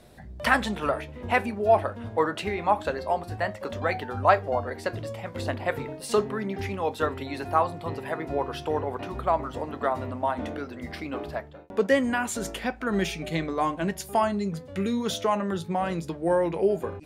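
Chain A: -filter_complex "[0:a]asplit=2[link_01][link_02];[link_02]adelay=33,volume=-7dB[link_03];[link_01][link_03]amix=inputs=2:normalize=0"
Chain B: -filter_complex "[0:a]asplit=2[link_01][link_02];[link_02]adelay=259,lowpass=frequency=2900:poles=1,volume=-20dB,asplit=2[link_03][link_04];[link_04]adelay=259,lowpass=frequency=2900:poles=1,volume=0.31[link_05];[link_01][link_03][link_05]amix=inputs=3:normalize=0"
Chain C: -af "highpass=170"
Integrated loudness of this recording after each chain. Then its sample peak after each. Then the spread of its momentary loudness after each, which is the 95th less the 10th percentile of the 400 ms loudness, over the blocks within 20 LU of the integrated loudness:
−27.0, −27.5, −28.0 LKFS; −3.5, −4.0, −4.5 dBFS; 10, 10, 10 LU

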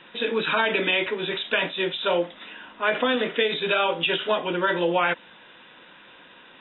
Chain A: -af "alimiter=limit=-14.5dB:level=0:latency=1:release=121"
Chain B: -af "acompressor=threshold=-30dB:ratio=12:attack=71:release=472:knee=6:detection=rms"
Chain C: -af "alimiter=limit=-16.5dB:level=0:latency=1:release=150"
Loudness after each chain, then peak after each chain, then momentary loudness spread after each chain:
−25.5, −33.0, −27.0 LKFS; −14.5, −16.5, −16.5 dBFS; 4, 16, 4 LU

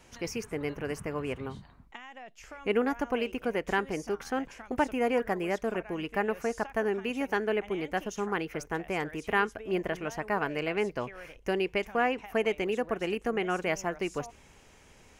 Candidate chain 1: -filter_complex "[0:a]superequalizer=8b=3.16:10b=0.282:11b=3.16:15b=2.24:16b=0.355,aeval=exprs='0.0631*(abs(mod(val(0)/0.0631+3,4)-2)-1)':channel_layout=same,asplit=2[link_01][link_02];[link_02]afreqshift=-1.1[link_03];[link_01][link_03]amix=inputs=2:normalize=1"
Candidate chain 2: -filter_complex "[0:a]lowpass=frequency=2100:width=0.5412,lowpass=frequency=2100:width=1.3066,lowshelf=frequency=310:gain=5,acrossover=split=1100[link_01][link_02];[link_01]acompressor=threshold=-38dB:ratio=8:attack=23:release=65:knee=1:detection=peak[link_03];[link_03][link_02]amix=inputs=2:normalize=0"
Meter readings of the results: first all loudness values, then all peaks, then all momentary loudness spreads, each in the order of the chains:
−35.0, −36.5 LKFS; −20.0, −16.5 dBFS; 8, 8 LU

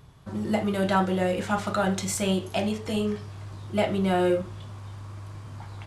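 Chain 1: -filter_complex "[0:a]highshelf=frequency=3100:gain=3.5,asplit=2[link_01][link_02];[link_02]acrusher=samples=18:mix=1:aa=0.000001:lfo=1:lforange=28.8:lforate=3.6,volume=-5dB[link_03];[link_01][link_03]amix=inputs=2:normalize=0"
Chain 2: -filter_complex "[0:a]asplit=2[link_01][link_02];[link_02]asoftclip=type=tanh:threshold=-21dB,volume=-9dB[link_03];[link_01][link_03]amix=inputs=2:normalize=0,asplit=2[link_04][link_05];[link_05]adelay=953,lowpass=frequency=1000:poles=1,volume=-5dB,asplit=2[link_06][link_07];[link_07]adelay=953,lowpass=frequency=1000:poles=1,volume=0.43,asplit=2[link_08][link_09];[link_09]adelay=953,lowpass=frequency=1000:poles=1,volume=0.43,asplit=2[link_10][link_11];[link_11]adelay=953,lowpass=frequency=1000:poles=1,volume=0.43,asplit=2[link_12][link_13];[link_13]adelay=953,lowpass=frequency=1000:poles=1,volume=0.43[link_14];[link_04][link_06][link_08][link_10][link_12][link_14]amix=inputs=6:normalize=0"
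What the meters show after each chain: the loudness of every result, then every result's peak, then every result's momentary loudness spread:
−23.0, −24.5 LKFS; −7.5, −10.5 dBFS; 17, 9 LU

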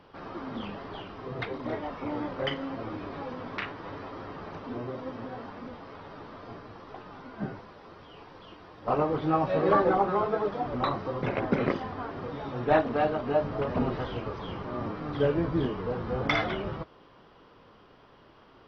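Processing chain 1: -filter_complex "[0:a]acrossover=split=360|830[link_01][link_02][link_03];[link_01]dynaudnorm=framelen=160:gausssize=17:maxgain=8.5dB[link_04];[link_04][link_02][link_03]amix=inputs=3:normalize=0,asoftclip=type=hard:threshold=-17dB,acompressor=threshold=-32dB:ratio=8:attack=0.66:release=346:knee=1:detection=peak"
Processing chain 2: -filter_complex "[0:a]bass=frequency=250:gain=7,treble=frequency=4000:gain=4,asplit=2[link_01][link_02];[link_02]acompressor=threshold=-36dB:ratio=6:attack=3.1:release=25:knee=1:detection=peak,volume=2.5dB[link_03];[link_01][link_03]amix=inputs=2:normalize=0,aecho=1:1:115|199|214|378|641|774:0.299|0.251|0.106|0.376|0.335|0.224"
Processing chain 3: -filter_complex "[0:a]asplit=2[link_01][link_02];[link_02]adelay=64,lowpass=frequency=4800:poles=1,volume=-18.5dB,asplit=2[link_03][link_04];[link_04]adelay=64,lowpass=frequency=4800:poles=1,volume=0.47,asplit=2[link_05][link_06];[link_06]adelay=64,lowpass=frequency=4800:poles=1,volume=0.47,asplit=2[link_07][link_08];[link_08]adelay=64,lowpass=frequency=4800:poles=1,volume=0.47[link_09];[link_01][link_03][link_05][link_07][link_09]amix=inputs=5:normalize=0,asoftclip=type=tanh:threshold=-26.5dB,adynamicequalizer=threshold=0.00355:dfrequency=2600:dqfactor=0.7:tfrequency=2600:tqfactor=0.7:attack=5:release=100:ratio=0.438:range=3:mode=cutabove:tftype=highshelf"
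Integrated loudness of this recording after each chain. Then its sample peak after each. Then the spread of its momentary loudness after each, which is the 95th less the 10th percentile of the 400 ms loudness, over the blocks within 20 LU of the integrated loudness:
−39.0, −25.0, −35.0 LKFS; −27.0, −6.0, −26.0 dBFS; 10, 13, 14 LU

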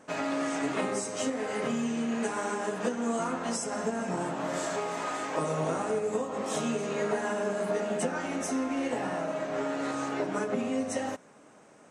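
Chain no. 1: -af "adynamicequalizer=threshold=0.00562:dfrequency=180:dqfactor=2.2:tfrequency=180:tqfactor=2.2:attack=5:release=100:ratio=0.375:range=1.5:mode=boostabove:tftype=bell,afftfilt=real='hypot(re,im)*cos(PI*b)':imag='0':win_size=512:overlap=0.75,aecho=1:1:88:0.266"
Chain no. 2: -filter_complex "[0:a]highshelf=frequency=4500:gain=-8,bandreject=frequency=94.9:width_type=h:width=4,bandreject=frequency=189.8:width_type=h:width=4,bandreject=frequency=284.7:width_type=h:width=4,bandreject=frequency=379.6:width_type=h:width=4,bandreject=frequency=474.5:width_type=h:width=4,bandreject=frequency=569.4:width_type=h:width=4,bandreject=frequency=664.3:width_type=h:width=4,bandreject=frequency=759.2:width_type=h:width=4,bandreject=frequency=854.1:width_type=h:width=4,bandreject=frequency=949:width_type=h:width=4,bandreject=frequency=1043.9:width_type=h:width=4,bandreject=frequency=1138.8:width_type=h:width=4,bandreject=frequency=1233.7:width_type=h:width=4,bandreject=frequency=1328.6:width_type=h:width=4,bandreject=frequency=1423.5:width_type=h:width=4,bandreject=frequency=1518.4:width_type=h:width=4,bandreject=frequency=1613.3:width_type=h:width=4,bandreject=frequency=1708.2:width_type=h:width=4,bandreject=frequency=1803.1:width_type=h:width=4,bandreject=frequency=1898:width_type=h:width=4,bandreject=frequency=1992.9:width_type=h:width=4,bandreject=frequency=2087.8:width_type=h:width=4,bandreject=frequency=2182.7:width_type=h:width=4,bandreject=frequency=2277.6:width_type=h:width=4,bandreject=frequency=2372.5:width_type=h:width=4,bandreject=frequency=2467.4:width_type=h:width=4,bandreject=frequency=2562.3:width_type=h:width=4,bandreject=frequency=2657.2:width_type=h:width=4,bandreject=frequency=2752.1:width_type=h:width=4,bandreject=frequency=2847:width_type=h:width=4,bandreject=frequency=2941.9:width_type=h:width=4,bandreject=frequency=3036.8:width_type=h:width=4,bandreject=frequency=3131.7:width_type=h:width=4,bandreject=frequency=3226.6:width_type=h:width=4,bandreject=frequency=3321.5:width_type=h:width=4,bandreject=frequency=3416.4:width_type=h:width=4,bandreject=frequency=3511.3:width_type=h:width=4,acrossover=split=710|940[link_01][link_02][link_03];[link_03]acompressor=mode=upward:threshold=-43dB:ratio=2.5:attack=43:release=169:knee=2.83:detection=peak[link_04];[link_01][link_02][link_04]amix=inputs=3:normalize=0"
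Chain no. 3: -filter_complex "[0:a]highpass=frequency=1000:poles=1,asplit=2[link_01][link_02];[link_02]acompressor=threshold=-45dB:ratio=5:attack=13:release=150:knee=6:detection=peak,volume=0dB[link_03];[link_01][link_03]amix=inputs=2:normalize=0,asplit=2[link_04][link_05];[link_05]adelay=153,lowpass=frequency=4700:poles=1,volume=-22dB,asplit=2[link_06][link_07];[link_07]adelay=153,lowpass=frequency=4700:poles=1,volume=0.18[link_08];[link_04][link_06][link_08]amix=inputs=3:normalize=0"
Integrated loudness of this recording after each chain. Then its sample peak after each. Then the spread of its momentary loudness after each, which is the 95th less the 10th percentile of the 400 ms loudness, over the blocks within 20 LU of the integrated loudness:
−35.5, −32.0, −34.0 LKFS; −18.0, −17.5, −19.5 dBFS; 3, 3, 3 LU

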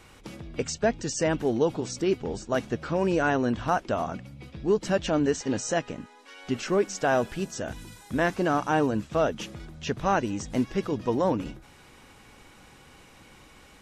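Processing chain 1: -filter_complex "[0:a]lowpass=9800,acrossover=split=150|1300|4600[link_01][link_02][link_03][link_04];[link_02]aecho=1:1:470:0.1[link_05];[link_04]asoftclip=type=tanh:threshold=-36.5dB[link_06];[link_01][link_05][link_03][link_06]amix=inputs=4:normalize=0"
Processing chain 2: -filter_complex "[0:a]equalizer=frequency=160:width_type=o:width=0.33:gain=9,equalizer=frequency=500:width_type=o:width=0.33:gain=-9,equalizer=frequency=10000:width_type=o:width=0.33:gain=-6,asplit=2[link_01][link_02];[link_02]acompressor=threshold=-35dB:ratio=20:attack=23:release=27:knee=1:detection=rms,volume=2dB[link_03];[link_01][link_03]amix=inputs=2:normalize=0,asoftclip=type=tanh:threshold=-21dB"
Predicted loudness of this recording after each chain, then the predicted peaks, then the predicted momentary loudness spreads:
−27.5, −28.5 LKFS; −10.5, −21.0 dBFS; 15, 18 LU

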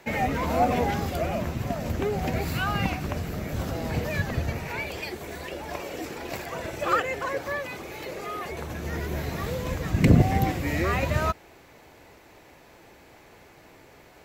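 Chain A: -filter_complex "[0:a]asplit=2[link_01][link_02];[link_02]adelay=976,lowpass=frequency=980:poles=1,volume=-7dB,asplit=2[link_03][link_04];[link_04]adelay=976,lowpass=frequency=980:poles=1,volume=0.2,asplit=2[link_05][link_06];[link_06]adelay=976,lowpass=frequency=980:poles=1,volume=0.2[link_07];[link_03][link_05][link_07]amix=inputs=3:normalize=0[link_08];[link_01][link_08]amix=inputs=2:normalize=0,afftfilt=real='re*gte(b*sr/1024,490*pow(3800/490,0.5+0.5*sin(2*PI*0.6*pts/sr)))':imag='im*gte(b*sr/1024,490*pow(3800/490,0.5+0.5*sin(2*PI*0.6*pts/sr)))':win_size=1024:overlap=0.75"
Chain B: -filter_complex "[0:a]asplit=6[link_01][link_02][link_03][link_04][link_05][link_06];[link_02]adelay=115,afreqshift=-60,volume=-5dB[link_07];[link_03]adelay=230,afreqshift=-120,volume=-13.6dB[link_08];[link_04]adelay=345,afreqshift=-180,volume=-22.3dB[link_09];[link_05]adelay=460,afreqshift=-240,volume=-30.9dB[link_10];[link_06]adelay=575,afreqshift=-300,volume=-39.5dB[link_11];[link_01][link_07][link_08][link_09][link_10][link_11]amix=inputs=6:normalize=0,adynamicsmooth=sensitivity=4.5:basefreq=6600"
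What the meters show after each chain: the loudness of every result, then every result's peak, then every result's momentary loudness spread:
−35.0, −27.0 LKFS; −13.0, −5.5 dBFS; 17, 12 LU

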